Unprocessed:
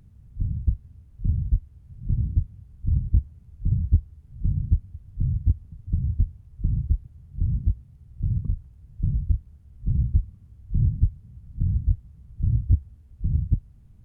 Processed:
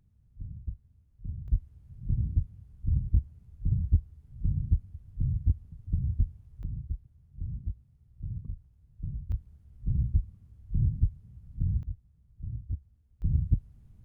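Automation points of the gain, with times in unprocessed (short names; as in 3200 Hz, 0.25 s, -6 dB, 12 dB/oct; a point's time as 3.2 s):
-14 dB
from 1.48 s -4.5 dB
from 6.63 s -12 dB
from 9.32 s -5 dB
from 11.83 s -15 dB
from 13.22 s -3 dB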